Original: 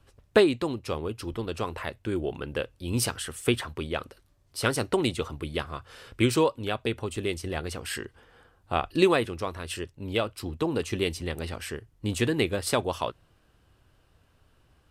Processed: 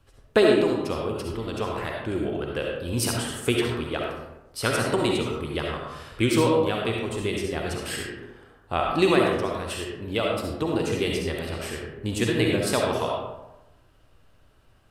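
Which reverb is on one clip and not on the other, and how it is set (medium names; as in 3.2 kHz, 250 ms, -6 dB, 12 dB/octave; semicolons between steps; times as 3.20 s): algorithmic reverb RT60 1 s, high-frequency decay 0.5×, pre-delay 25 ms, DRR -1 dB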